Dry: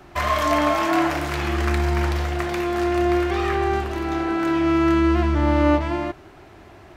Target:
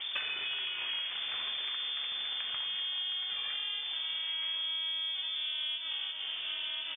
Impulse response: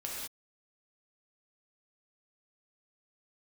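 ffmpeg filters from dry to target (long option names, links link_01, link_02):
-filter_complex "[0:a]highshelf=frequency=2200:gain=-6.5,acrossover=split=120[link_01][link_02];[link_01]asoftclip=type=tanh:threshold=-35.5dB[link_03];[link_03][link_02]amix=inputs=2:normalize=0,equalizer=frequency=890:width=0.33:gain=-9.5,asplit=2[link_04][link_05];[link_05]asplit=7[link_06][link_07][link_08][link_09][link_10][link_11][link_12];[link_06]adelay=298,afreqshift=96,volume=-17dB[link_13];[link_07]adelay=596,afreqshift=192,volume=-20.7dB[link_14];[link_08]adelay=894,afreqshift=288,volume=-24.5dB[link_15];[link_09]adelay=1192,afreqshift=384,volume=-28.2dB[link_16];[link_10]adelay=1490,afreqshift=480,volume=-32dB[link_17];[link_11]adelay=1788,afreqshift=576,volume=-35.7dB[link_18];[link_12]adelay=2086,afreqshift=672,volume=-39.5dB[link_19];[link_13][link_14][link_15][link_16][link_17][link_18][link_19]amix=inputs=7:normalize=0[link_20];[link_04][link_20]amix=inputs=2:normalize=0,lowpass=frequency=3100:width_type=q:width=0.5098,lowpass=frequency=3100:width_type=q:width=0.6013,lowpass=frequency=3100:width_type=q:width=0.9,lowpass=frequency=3100:width_type=q:width=2.563,afreqshift=-3600,acontrast=53,asplit=2[link_21][link_22];[link_22]adelay=1050,volume=-9dB,highshelf=frequency=4000:gain=-23.6[link_23];[link_21][link_23]amix=inputs=2:normalize=0,acompressor=threshold=-42dB:ratio=12,volume=8dB"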